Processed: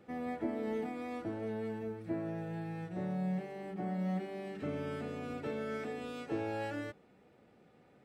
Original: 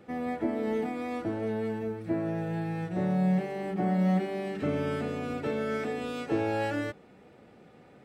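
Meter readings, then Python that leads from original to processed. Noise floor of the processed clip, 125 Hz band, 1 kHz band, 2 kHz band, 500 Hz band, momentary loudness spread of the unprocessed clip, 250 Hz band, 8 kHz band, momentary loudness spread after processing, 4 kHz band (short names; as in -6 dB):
-64 dBFS, -9.0 dB, -8.0 dB, -8.0 dB, -8.0 dB, 7 LU, -8.5 dB, n/a, 5 LU, -8.0 dB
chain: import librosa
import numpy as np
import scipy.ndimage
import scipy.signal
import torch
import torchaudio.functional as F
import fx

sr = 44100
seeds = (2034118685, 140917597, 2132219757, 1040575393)

y = fx.rider(x, sr, range_db=10, speed_s=2.0)
y = y * 10.0 ** (-8.5 / 20.0)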